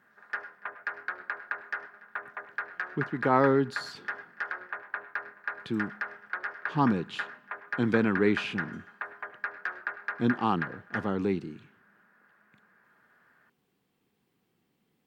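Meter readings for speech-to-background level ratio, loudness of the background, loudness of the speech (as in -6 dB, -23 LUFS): 8.0 dB, -37.0 LUFS, -29.0 LUFS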